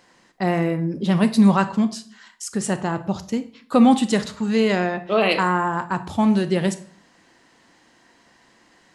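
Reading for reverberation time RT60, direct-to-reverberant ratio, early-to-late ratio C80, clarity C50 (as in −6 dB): 0.55 s, 11.0 dB, 19.0 dB, 14.5 dB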